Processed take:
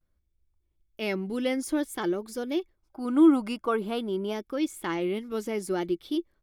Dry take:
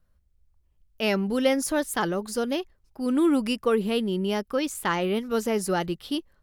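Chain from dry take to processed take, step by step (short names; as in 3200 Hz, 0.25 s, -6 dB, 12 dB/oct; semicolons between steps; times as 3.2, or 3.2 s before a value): spectral gain 2.79–4.33, 580–1600 Hz +9 dB; small resonant body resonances 330/2200/3400 Hz, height 13 dB, ringing for 50 ms; vibrato 0.53 Hz 56 cents; gain -8 dB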